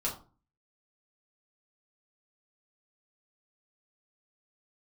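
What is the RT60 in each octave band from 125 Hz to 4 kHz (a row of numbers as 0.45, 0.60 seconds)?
0.55, 0.50, 0.40, 0.35, 0.25, 0.25 seconds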